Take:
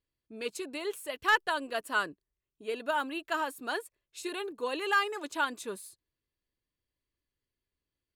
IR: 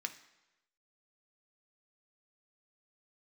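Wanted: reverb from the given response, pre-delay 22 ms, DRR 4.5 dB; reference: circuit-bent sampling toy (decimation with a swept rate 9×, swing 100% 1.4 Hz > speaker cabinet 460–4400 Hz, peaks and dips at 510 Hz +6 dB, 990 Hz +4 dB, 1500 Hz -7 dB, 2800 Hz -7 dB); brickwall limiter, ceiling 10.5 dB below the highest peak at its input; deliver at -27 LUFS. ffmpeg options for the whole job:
-filter_complex "[0:a]alimiter=level_in=3dB:limit=-24dB:level=0:latency=1,volume=-3dB,asplit=2[a][b];[1:a]atrim=start_sample=2205,adelay=22[c];[b][c]afir=irnorm=-1:irlink=0,volume=-4.5dB[d];[a][d]amix=inputs=2:normalize=0,acrusher=samples=9:mix=1:aa=0.000001:lfo=1:lforange=9:lforate=1.4,highpass=460,equalizer=f=510:t=q:w=4:g=6,equalizer=f=990:t=q:w=4:g=4,equalizer=f=1.5k:t=q:w=4:g=-7,equalizer=f=2.8k:t=q:w=4:g=-7,lowpass=f=4.4k:w=0.5412,lowpass=f=4.4k:w=1.3066,volume=11.5dB"

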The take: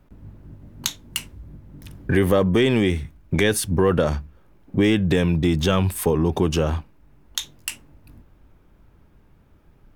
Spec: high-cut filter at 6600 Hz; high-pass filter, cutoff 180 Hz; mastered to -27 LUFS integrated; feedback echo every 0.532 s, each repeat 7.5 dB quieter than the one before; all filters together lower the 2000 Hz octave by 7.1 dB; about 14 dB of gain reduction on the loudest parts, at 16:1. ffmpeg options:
-af "highpass=180,lowpass=6.6k,equalizer=f=2k:t=o:g=-9,acompressor=threshold=-29dB:ratio=16,aecho=1:1:532|1064|1596|2128|2660:0.422|0.177|0.0744|0.0312|0.0131,volume=8.5dB"

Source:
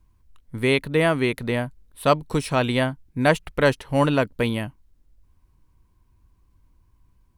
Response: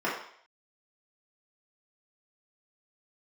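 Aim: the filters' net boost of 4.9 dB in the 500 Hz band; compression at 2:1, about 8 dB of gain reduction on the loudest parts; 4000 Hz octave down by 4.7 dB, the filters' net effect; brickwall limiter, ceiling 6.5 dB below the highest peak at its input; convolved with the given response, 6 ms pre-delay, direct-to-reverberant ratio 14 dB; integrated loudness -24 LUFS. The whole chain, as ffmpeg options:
-filter_complex "[0:a]equalizer=f=500:t=o:g=6,equalizer=f=4k:t=o:g=-6.5,acompressor=threshold=-24dB:ratio=2,alimiter=limit=-16.5dB:level=0:latency=1,asplit=2[a][b];[1:a]atrim=start_sample=2205,adelay=6[c];[b][c]afir=irnorm=-1:irlink=0,volume=-25.5dB[d];[a][d]amix=inputs=2:normalize=0,volume=4.5dB"

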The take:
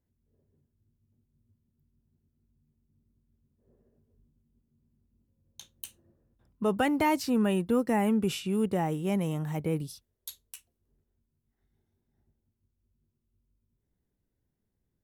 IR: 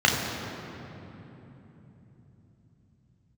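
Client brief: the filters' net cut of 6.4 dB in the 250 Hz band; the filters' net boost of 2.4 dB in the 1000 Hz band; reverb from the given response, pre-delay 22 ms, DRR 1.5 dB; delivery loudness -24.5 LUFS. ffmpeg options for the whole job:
-filter_complex "[0:a]equalizer=f=250:t=o:g=-8.5,equalizer=f=1k:t=o:g=3.5,asplit=2[a][b];[1:a]atrim=start_sample=2205,adelay=22[c];[b][c]afir=irnorm=-1:irlink=0,volume=-20dB[d];[a][d]amix=inputs=2:normalize=0,volume=4.5dB"

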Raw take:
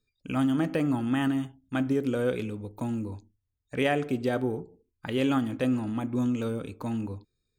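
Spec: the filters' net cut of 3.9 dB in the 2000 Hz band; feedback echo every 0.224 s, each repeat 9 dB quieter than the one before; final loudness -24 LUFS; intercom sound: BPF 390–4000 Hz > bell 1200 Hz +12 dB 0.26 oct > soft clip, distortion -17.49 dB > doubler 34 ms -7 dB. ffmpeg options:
-filter_complex "[0:a]highpass=390,lowpass=4k,equalizer=f=1.2k:t=o:w=0.26:g=12,equalizer=f=2k:t=o:g=-6,aecho=1:1:224|448|672|896:0.355|0.124|0.0435|0.0152,asoftclip=threshold=-22dB,asplit=2[a][b];[b]adelay=34,volume=-7dB[c];[a][c]amix=inputs=2:normalize=0,volume=9.5dB"

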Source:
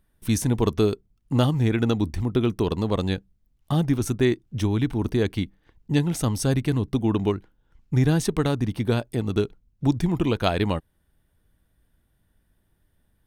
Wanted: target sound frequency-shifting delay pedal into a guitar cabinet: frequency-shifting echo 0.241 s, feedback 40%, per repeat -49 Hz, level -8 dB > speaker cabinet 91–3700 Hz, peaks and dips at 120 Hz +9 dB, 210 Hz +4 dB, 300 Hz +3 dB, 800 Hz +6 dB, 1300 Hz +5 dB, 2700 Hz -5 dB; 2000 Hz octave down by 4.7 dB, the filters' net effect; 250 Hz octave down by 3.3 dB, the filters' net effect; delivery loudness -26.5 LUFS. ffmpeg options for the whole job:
-filter_complex "[0:a]equalizer=f=250:t=o:g=-9,equalizer=f=2k:t=o:g=-6.5,asplit=6[a][b][c][d][e][f];[b]adelay=241,afreqshift=-49,volume=-8dB[g];[c]adelay=482,afreqshift=-98,volume=-16dB[h];[d]adelay=723,afreqshift=-147,volume=-23.9dB[i];[e]adelay=964,afreqshift=-196,volume=-31.9dB[j];[f]adelay=1205,afreqshift=-245,volume=-39.8dB[k];[a][g][h][i][j][k]amix=inputs=6:normalize=0,highpass=91,equalizer=f=120:t=q:w=4:g=9,equalizer=f=210:t=q:w=4:g=4,equalizer=f=300:t=q:w=4:g=3,equalizer=f=800:t=q:w=4:g=6,equalizer=f=1.3k:t=q:w=4:g=5,equalizer=f=2.7k:t=q:w=4:g=-5,lowpass=f=3.7k:w=0.5412,lowpass=f=3.7k:w=1.3066,volume=-2.5dB"

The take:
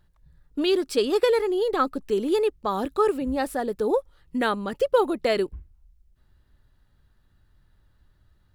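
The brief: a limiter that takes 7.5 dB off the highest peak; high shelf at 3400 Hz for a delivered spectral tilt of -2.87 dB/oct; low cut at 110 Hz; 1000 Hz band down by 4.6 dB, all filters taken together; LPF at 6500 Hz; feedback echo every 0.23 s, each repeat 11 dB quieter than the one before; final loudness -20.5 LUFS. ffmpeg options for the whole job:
-af "highpass=110,lowpass=6.5k,equalizer=f=1k:t=o:g=-7,highshelf=f=3.4k:g=6,alimiter=limit=-17.5dB:level=0:latency=1,aecho=1:1:230|460|690:0.282|0.0789|0.0221,volume=6.5dB"

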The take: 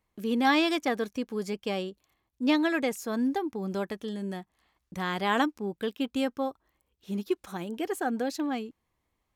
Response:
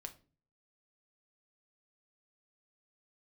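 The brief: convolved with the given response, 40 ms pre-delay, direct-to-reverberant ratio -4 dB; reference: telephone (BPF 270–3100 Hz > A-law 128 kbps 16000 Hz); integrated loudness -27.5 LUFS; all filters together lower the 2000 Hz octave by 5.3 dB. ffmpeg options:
-filter_complex "[0:a]equalizer=f=2k:t=o:g=-6,asplit=2[a][b];[1:a]atrim=start_sample=2205,adelay=40[c];[b][c]afir=irnorm=-1:irlink=0,volume=8.5dB[d];[a][d]amix=inputs=2:normalize=0,highpass=270,lowpass=3.1k,volume=-0.5dB" -ar 16000 -c:a pcm_alaw

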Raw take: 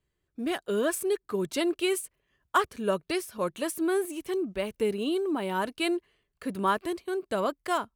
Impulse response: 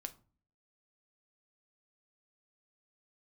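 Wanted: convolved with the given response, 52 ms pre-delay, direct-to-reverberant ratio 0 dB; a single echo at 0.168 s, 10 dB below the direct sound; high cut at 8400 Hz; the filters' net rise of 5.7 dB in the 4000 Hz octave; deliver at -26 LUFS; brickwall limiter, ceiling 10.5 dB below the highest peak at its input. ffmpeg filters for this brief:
-filter_complex "[0:a]lowpass=8.4k,equalizer=f=4k:t=o:g=8,alimiter=limit=-22.5dB:level=0:latency=1,aecho=1:1:168:0.316,asplit=2[a][b];[1:a]atrim=start_sample=2205,adelay=52[c];[b][c]afir=irnorm=-1:irlink=0,volume=3.5dB[d];[a][d]amix=inputs=2:normalize=0,volume=3dB"

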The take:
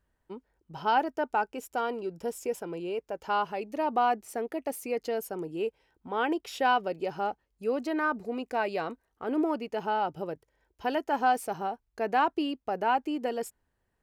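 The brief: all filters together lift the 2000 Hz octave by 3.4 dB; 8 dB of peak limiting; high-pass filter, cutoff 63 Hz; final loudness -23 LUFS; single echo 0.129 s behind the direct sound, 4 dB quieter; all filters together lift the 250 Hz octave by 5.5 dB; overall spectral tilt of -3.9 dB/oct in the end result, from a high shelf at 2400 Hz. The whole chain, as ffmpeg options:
-af "highpass=63,equalizer=f=250:t=o:g=7,equalizer=f=2k:t=o:g=8,highshelf=f=2.4k:g=-6,alimiter=limit=-19.5dB:level=0:latency=1,aecho=1:1:129:0.631,volume=6.5dB"

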